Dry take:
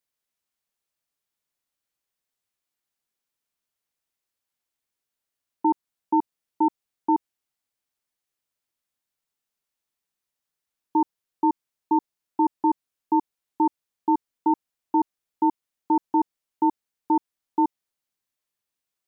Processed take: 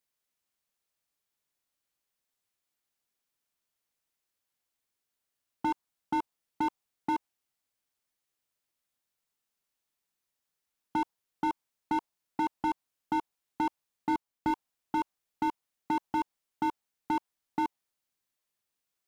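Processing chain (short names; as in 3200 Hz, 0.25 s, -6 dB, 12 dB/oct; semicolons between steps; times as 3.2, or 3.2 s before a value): 14.09–14.51 sample leveller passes 2; dynamic EQ 860 Hz, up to +7 dB, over -36 dBFS, Q 2; slew limiter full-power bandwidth 37 Hz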